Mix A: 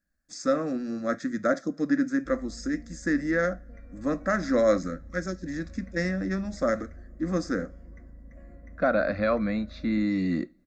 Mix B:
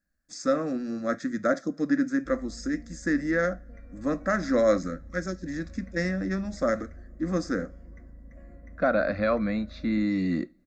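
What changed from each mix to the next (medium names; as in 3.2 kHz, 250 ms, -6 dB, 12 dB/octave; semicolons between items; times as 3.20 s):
no change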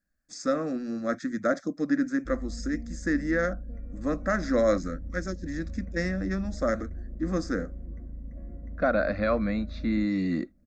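background: add tilt shelf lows +9.5 dB, about 760 Hz; reverb: off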